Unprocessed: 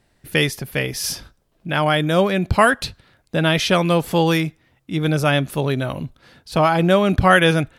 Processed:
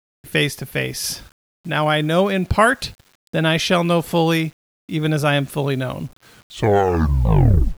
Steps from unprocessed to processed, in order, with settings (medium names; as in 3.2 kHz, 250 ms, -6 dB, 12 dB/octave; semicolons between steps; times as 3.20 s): tape stop on the ending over 1.63 s; word length cut 8-bit, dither none